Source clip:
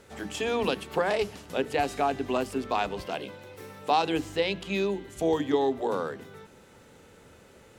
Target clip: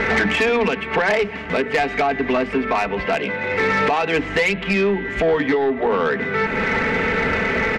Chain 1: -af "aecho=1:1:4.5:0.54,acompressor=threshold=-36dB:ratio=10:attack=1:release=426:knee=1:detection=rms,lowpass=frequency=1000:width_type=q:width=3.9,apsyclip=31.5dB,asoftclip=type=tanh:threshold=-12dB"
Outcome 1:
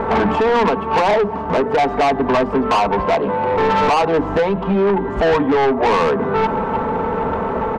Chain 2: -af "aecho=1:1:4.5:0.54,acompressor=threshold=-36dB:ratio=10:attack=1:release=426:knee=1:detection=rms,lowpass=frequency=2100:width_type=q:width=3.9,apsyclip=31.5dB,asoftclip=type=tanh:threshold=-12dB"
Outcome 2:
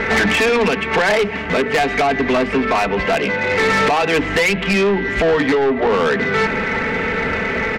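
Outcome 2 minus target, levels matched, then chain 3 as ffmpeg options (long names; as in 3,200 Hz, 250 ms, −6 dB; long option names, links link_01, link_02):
downward compressor: peak gain reduction −6.5 dB
-af "aecho=1:1:4.5:0.54,acompressor=threshold=-43dB:ratio=10:attack=1:release=426:knee=1:detection=rms,lowpass=frequency=2100:width_type=q:width=3.9,apsyclip=31.5dB,asoftclip=type=tanh:threshold=-12dB"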